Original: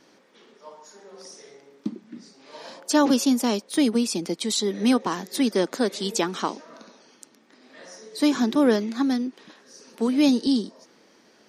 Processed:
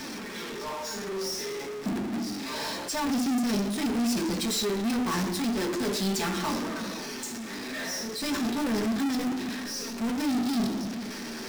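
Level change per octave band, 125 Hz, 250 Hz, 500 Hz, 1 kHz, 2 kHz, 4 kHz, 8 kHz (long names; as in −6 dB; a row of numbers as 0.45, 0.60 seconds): +2.5, −4.5, −6.0, −2.5, +0.5, −2.0, −1.5 decibels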